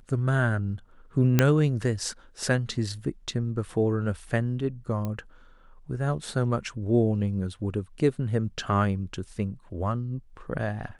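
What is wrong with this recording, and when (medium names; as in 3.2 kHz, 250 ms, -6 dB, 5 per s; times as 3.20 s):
1.39 s: pop -5 dBFS
5.05 s: pop -19 dBFS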